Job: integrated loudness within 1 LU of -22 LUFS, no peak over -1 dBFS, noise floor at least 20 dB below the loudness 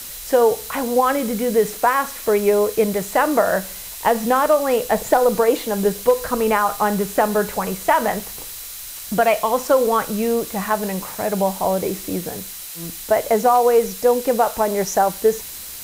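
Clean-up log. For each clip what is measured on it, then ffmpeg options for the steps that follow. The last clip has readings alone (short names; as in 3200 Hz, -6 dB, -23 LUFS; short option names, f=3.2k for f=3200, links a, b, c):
steady tone 4000 Hz; tone level -48 dBFS; noise floor -34 dBFS; noise floor target -39 dBFS; loudness -19.0 LUFS; peak -2.5 dBFS; loudness target -22.0 LUFS
-> -af "bandreject=f=4k:w=30"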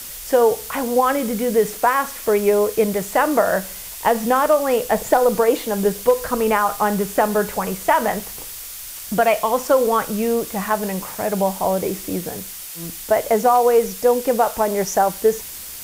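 steady tone none; noise floor -34 dBFS; noise floor target -39 dBFS
-> -af "afftdn=nr=6:nf=-34"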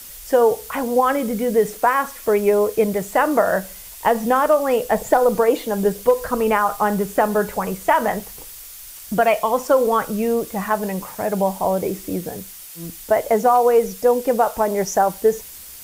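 noise floor -38 dBFS; noise floor target -40 dBFS
-> -af "afftdn=nr=6:nf=-38"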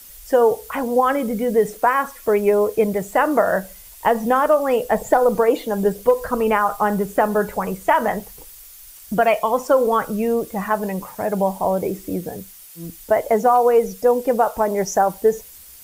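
noise floor -43 dBFS; loudness -19.5 LUFS; peak -2.5 dBFS; loudness target -22.0 LUFS
-> -af "volume=-2.5dB"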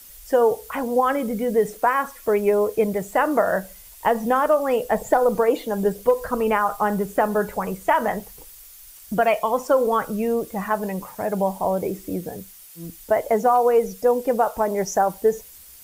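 loudness -22.0 LUFS; peak -5.0 dBFS; noise floor -45 dBFS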